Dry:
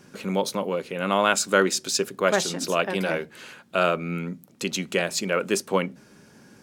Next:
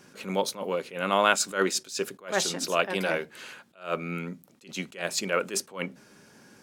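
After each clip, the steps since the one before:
low-shelf EQ 300 Hz −7 dB
level that may rise only so fast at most 180 dB per second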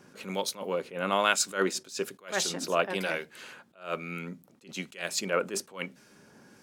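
two-band tremolo in antiphase 1.1 Hz, depth 50%, crossover 1,600 Hz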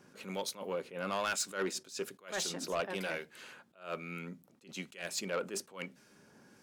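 soft clipping −21.5 dBFS, distortion −11 dB
level −5 dB

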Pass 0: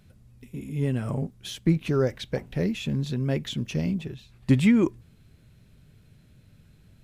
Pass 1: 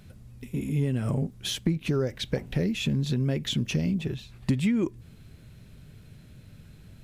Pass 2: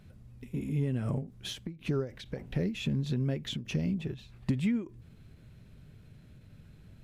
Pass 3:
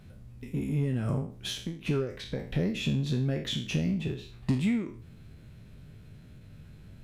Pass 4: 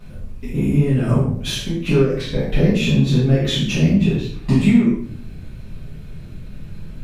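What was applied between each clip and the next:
dynamic equaliser 1,000 Hz, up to −4 dB, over −40 dBFS, Q 0.78; downward compressor 5 to 1, threshold −29 dBFS, peak gain reduction 13.5 dB; level +6 dB
high-shelf EQ 3,700 Hz −7 dB; every ending faded ahead of time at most 170 dB per second; level −4 dB
peak hold with a decay on every bin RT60 0.43 s; in parallel at −10 dB: hard clipping −30 dBFS, distortion −9 dB
rectangular room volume 55 cubic metres, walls mixed, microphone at 1.9 metres; level +3 dB

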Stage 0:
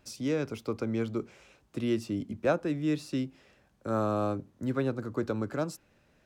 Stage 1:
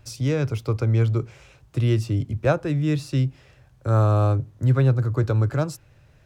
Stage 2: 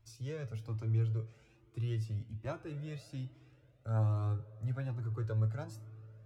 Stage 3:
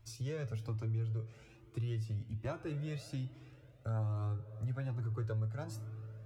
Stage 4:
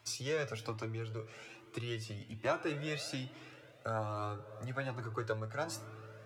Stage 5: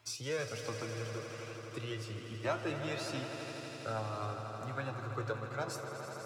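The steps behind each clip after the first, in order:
low shelf with overshoot 160 Hz +8 dB, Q 3; level +6 dB
tuned comb filter 110 Hz, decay 0.23 s, harmonics all, mix 70%; spring reverb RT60 3.7 s, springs 55 ms, chirp 50 ms, DRR 17 dB; flanger whose copies keep moving one way rising 1.2 Hz; level −7.5 dB
downward compressor 3 to 1, threshold −42 dBFS, peak gain reduction 11 dB; level +5.5 dB
meter weighting curve A; level +10.5 dB
echo that builds up and dies away 82 ms, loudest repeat 5, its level −12 dB; level −1.5 dB

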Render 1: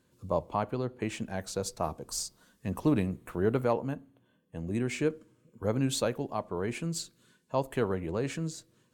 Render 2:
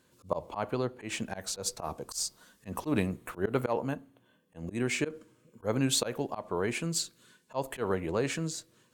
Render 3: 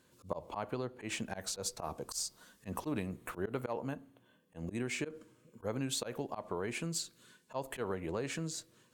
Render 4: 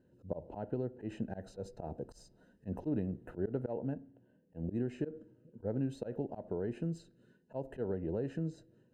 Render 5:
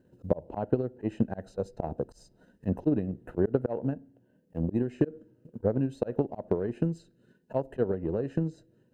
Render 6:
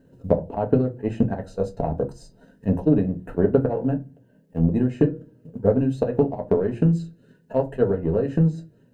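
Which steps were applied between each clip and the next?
low-shelf EQ 360 Hz −7.5 dB; volume swells 116 ms; level +5.5 dB
downward compressor 3 to 1, threshold −34 dBFS, peak gain reduction 9 dB; level −1 dB
moving average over 39 samples; level +3.5 dB
transient designer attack +9 dB, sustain −3 dB; level +4 dB
convolution reverb RT60 0.25 s, pre-delay 4 ms, DRR 2.5 dB; level +5.5 dB

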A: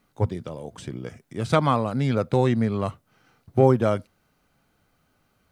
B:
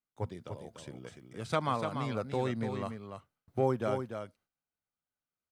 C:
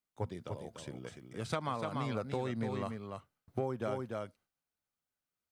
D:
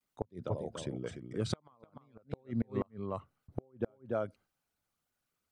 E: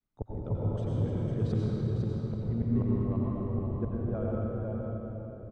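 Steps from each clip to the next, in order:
noise gate with hold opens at −47 dBFS; low-shelf EQ 420 Hz −6 dB; on a send: single-tap delay 293 ms −7 dB; on the sum: level −8.5 dB
downward compressor 6 to 1, threshold −32 dBFS, peak gain reduction 9.5 dB; level +1 dB
spectral envelope exaggerated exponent 1.5; pitch vibrato 0.54 Hz 44 cents; gate with flip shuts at −26 dBFS, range −35 dB; level +6 dB
RIAA equalisation playback; single-tap delay 502 ms −6 dB; convolution reverb RT60 3.9 s, pre-delay 83 ms, DRR −5 dB; level −7.5 dB

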